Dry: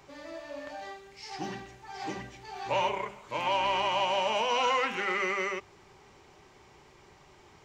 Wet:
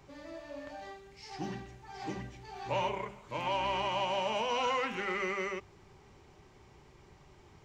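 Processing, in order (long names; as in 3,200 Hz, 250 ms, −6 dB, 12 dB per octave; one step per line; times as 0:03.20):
low-shelf EQ 260 Hz +10.5 dB
level −5.5 dB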